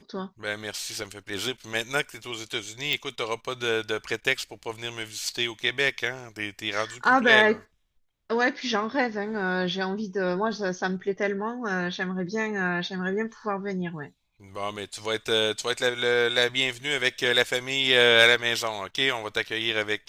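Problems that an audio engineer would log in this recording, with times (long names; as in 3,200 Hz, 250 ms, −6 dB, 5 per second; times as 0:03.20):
0:02.93: click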